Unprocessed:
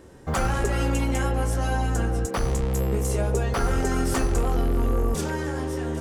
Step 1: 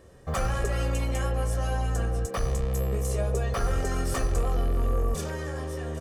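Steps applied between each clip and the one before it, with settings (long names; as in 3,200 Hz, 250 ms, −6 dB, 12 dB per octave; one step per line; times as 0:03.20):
comb filter 1.7 ms, depth 48%
level −5 dB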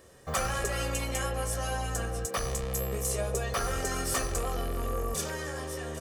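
spectral tilt +2 dB per octave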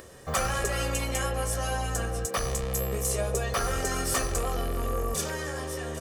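upward compression, threshold −45 dBFS
level +2.5 dB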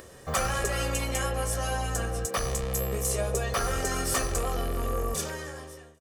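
fade-out on the ending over 0.93 s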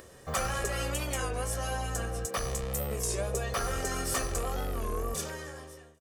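wow of a warped record 33 1/3 rpm, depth 160 cents
level −3.5 dB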